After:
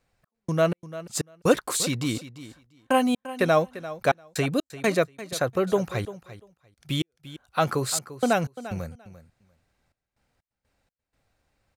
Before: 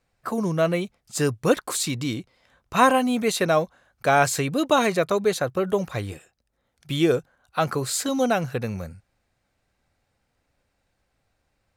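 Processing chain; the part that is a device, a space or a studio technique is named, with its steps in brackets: trance gate with a delay (trance gate "x.x.x.xx" 62 bpm -60 dB; feedback delay 345 ms, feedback 15%, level -15 dB)

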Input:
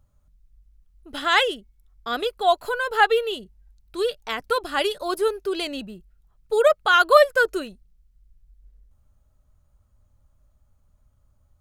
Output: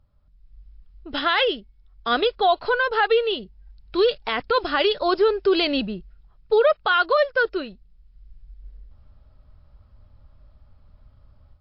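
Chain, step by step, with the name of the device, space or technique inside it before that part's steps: low-bitrate web radio (level rider gain up to 10.5 dB; peak limiter -10 dBFS, peak gain reduction 9 dB; MP3 40 kbps 12 kHz)

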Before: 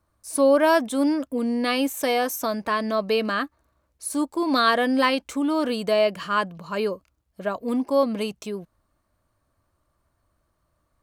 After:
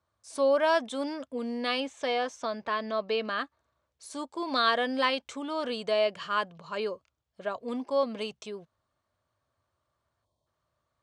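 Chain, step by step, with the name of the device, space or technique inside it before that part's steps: 1.80–3.39 s: distance through air 86 m; 10.25–10.47 s: time-frequency box 1.1–3.1 kHz -25 dB; car door speaker (cabinet simulation 100–7700 Hz, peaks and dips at 190 Hz -8 dB, 300 Hz -9 dB, 3.4 kHz +5 dB); trim -5.5 dB

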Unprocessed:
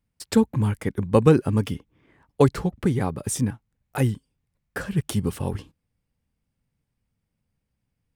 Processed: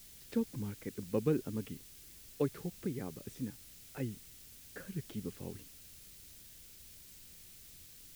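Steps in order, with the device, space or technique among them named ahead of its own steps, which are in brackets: wax cylinder (band-pass 350–2200 Hz; wow and flutter; white noise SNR 15 dB); amplifier tone stack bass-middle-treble 10-0-1; trim +11 dB

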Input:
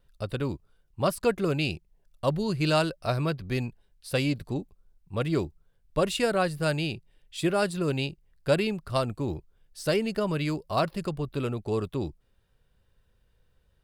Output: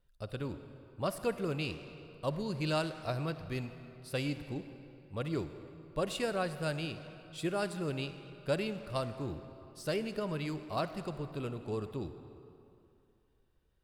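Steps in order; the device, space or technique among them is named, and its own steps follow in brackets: saturated reverb return (on a send at -8 dB: reverberation RT60 2.6 s, pre-delay 46 ms + saturation -25.5 dBFS, distortion -12 dB); on the sum: trim -8.5 dB

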